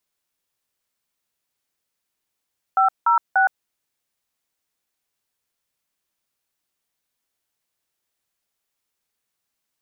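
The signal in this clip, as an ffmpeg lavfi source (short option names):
-f lavfi -i "aevalsrc='0.158*clip(min(mod(t,0.293),0.116-mod(t,0.293))/0.002,0,1)*(eq(floor(t/0.293),0)*(sin(2*PI*770*mod(t,0.293))+sin(2*PI*1336*mod(t,0.293)))+eq(floor(t/0.293),1)*(sin(2*PI*941*mod(t,0.293))+sin(2*PI*1336*mod(t,0.293)))+eq(floor(t/0.293),2)*(sin(2*PI*770*mod(t,0.293))+sin(2*PI*1477*mod(t,0.293))))':d=0.879:s=44100"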